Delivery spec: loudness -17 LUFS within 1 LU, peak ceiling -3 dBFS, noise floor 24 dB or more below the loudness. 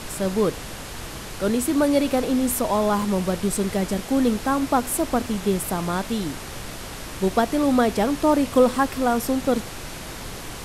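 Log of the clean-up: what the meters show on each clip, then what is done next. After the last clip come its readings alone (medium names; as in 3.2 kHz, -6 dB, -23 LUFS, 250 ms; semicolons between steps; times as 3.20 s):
dropouts 2; longest dropout 1.1 ms; noise floor -35 dBFS; noise floor target -47 dBFS; loudness -22.5 LUFS; peak level -5.0 dBFS; loudness target -17.0 LUFS
-> interpolate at 3.02/8.93 s, 1.1 ms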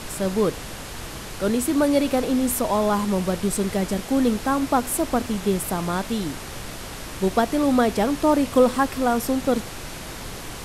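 dropouts 0; noise floor -35 dBFS; noise floor target -47 dBFS
-> noise print and reduce 12 dB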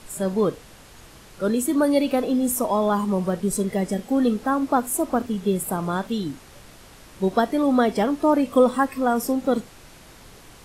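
noise floor -47 dBFS; loudness -22.5 LUFS; peak level -5.5 dBFS; loudness target -17.0 LUFS
-> trim +5.5 dB; peak limiter -3 dBFS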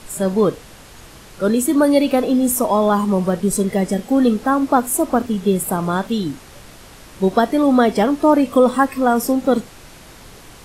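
loudness -17.5 LUFS; peak level -3.0 dBFS; noise floor -42 dBFS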